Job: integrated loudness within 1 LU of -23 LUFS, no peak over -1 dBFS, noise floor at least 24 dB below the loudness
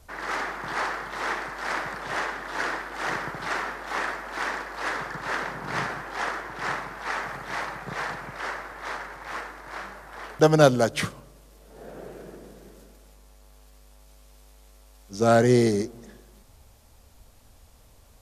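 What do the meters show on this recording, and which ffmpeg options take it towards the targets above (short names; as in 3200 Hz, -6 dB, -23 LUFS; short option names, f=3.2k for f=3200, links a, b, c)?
loudness -27.0 LUFS; peak -3.0 dBFS; loudness target -23.0 LUFS
-> -af "volume=4dB,alimiter=limit=-1dB:level=0:latency=1"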